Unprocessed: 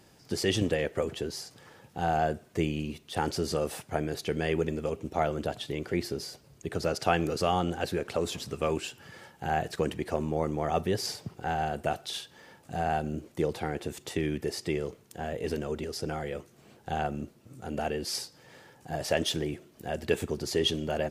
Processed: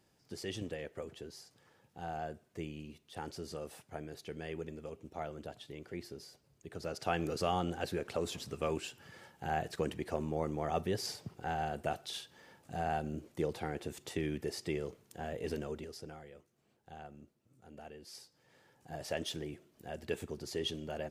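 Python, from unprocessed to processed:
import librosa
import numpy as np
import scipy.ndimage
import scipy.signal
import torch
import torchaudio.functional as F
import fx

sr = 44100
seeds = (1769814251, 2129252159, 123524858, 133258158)

y = fx.gain(x, sr, db=fx.line((6.67, -13.5), (7.3, -6.0), (15.63, -6.0), (16.33, -19.0), (18.03, -19.0), (18.89, -10.0)))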